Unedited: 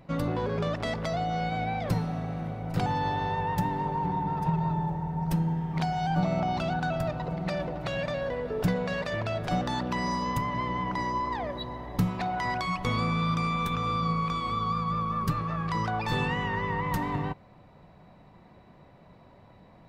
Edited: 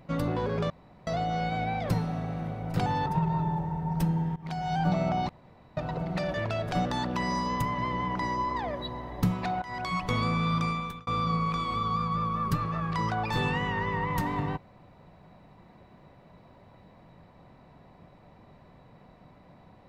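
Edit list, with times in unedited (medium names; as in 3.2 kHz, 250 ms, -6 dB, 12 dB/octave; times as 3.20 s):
0.70–1.07 s: room tone
3.06–4.37 s: delete
5.67–6.05 s: fade in linear, from -19 dB
6.60–7.08 s: room tone
7.65–9.10 s: delete
12.38–12.70 s: fade in, from -16 dB
13.40–13.83 s: fade out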